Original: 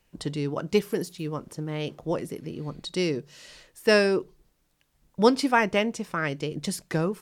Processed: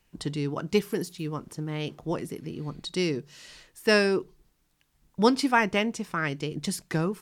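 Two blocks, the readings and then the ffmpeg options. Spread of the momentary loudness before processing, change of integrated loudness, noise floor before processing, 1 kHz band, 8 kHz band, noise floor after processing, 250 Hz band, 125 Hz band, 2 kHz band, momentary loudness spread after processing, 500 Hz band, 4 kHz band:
13 LU, −1.0 dB, −70 dBFS, −0.5 dB, 0.0 dB, −70 dBFS, −0.5 dB, 0.0 dB, 0.0 dB, 14 LU, −2.5 dB, 0.0 dB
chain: -af "equalizer=frequency=550:width_type=o:width=0.5:gain=-6"

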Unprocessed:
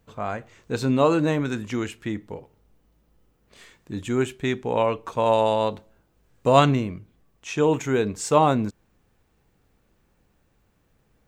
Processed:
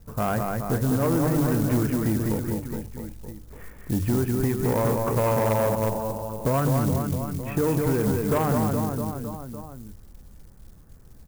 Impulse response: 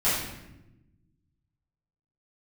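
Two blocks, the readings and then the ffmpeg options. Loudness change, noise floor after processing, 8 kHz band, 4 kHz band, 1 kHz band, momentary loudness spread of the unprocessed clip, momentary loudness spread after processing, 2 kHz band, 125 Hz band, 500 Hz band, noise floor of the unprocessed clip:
−1.5 dB, −48 dBFS, +2.0 dB, −8.0 dB, −4.5 dB, 16 LU, 16 LU, −3.0 dB, +5.0 dB, −2.5 dB, −66 dBFS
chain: -filter_complex "[0:a]lowpass=frequency=1800:width=0.5412,lowpass=frequency=1800:width=1.3066,aemphasis=mode=reproduction:type=riaa,bandreject=frequency=50:width_type=h:width=6,bandreject=frequency=100:width_type=h:width=6,bandreject=frequency=150:width_type=h:width=6,asplit=2[link_01][link_02];[link_02]alimiter=limit=-10.5dB:level=0:latency=1:release=62,volume=-1dB[link_03];[link_01][link_03]amix=inputs=2:normalize=0,acompressor=threshold=-14dB:ratio=16,asplit=2[link_04][link_05];[link_05]aecho=0:1:200|420|662|928.2|1221:0.631|0.398|0.251|0.158|0.1[link_06];[link_04][link_06]amix=inputs=2:normalize=0,asoftclip=type=tanh:threshold=-13dB,acrusher=bits=8:mode=log:mix=0:aa=0.000001,crystalizer=i=5:c=0,volume=-3.5dB"

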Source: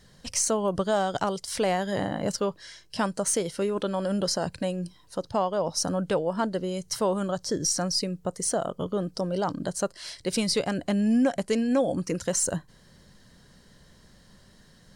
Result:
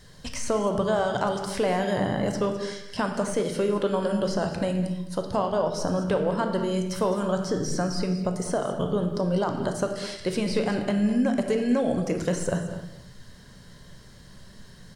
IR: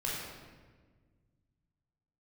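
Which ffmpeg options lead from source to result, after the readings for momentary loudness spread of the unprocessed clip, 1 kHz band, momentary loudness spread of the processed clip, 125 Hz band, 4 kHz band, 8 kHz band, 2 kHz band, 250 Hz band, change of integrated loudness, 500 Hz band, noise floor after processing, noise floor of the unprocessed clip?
7 LU, +1.0 dB, 5 LU, +4.0 dB, −4.0 dB, −9.0 dB, +2.5 dB, +2.0 dB, +1.0 dB, +2.0 dB, −48 dBFS, −57 dBFS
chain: -filter_complex "[0:a]acrossover=split=2600[link_01][link_02];[link_02]acompressor=threshold=-41dB:ratio=4:attack=1:release=60[link_03];[link_01][link_03]amix=inputs=2:normalize=0,equalizer=frequency=510:width=7.2:gain=-3.5,acompressor=threshold=-28dB:ratio=2.5,aecho=1:1:208:0.211,asplit=2[link_04][link_05];[1:a]atrim=start_sample=2205,afade=type=out:start_time=0.36:duration=0.01,atrim=end_sample=16317[link_06];[link_05][link_06]afir=irnorm=-1:irlink=0,volume=-6dB[link_07];[link_04][link_07]amix=inputs=2:normalize=0,volume=2dB"

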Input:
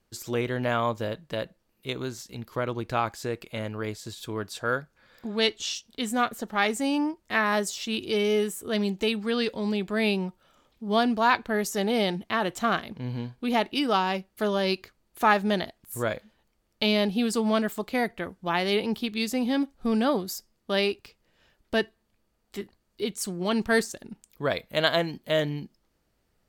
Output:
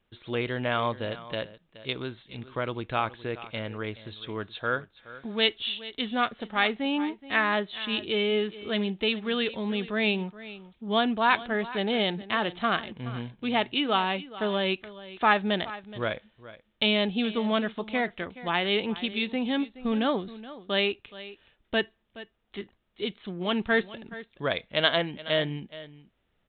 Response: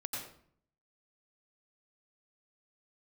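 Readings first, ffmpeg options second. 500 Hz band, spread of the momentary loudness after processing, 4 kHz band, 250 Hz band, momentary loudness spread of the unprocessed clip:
−2.0 dB, 16 LU, +2.0 dB, −2.5 dB, 12 LU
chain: -af "aecho=1:1:423:0.15,crystalizer=i=3.5:c=0,aresample=8000,aresample=44100,volume=-2.5dB"

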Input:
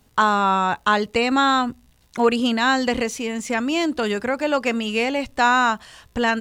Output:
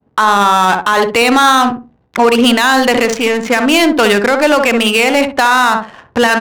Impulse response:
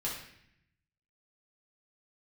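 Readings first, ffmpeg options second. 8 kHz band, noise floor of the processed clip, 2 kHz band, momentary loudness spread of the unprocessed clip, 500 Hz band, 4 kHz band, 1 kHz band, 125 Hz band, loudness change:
+12.5 dB, −52 dBFS, +10.0 dB, 7 LU, +10.5 dB, +11.5 dB, +9.0 dB, +7.0 dB, +10.0 dB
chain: -filter_complex "[0:a]highpass=120,agate=range=-33dB:threshold=-56dB:ratio=3:detection=peak,lowshelf=frequency=410:gain=-9,asplit=2[link_01][link_02];[link_02]asoftclip=type=tanh:threshold=-23dB,volume=-5dB[link_03];[link_01][link_03]amix=inputs=2:normalize=0,adynamicsmooth=sensitivity=4.5:basefreq=610,asplit=2[link_04][link_05];[link_05]adelay=64,lowpass=frequency=830:poles=1,volume=-5dB,asplit=2[link_06][link_07];[link_07]adelay=64,lowpass=frequency=830:poles=1,volume=0.27,asplit=2[link_08][link_09];[link_09]adelay=64,lowpass=frequency=830:poles=1,volume=0.27,asplit=2[link_10][link_11];[link_11]adelay=64,lowpass=frequency=830:poles=1,volume=0.27[link_12];[link_06][link_08][link_10][link_12]amix=inputs=4:normalize=0[link_13];[link_04][link_13]amix=inputs=2:normalize=0,alimiter=level_in=14.5dB:limit=-1dB:release=50:level=0:latency=1,volume=-1dB"

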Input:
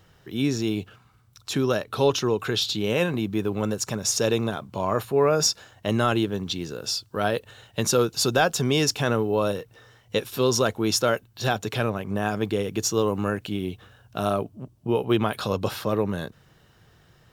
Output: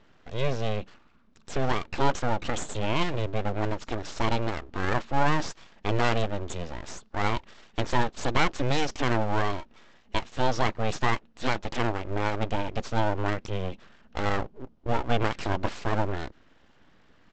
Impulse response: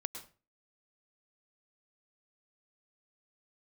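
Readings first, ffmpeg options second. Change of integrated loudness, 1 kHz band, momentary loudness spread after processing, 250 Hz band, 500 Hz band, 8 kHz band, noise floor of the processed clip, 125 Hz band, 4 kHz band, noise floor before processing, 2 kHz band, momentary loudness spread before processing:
−4.5 dB, +1.0 dB, 10 LU, −6.0 dB, −7.0 dB, −14.0 dB, −59 dBFS, −2.0 dB, −7.5 dB, −58 dBFS, −0.5 dB, 9 LU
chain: -af "lowpass=3000,aresample=16000,aeval=exprs='abs(val(0))':channel_layout=same,aresample=44100"

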